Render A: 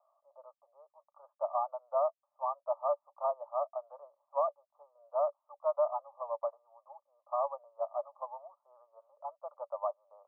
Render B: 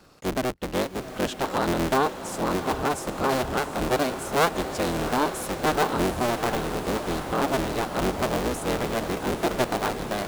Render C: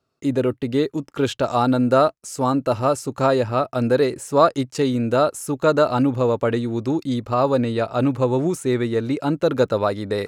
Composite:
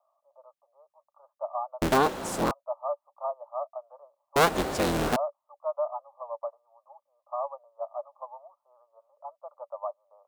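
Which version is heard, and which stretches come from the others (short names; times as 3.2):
A
1.82–2.51 from B
4.36–5.16 from B
not used: C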